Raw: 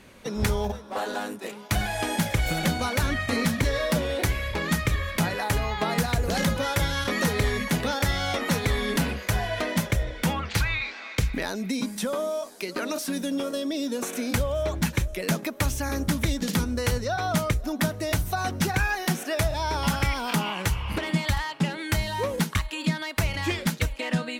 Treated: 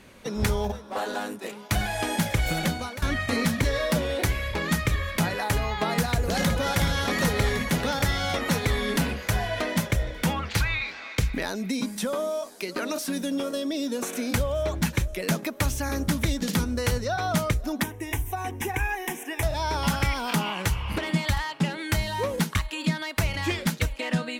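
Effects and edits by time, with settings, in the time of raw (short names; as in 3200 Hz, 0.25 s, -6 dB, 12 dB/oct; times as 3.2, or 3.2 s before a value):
2.59–3.02 fade out, to -15 dB
6.02–6.75 echo throw 0.37 s, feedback 75%, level -7.5 dB
17.83–19.43 fixed phaser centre 900 Hz, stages 8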